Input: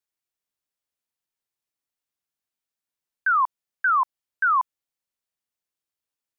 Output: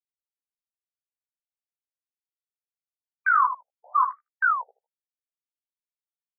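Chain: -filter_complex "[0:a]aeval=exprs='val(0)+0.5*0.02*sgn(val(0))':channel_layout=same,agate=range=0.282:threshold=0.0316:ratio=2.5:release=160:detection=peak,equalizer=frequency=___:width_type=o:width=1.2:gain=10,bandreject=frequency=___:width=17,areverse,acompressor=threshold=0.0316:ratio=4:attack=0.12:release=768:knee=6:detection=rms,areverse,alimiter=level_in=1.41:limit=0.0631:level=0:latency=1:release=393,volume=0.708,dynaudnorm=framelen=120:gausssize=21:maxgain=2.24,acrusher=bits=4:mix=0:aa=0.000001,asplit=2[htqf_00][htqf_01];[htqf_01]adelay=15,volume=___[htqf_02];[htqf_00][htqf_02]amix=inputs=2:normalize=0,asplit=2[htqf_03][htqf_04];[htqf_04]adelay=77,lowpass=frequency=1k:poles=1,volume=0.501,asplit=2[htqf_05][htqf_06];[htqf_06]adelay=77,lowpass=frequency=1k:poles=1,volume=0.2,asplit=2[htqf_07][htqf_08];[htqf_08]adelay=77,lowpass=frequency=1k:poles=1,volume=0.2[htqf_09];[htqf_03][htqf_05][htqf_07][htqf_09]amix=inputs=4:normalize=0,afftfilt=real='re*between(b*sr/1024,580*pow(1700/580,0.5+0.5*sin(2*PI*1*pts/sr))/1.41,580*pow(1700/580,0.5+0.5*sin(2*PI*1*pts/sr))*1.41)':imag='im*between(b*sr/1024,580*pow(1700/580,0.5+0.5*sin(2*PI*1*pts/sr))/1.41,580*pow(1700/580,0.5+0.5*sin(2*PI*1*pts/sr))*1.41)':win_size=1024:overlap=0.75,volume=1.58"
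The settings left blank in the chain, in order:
1.1k, 1.8k, 0.75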